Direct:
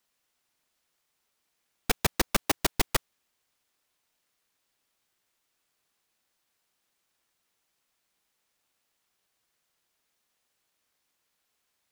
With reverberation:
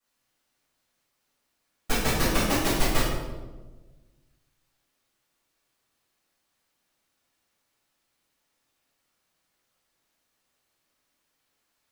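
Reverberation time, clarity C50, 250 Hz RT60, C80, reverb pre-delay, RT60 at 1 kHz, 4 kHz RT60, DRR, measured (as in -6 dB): 1.3 s, -1.0 dB, 1.8 s, 2.5 dB, 5 ms, 1.1 s, 0.75 s, -12.5 dB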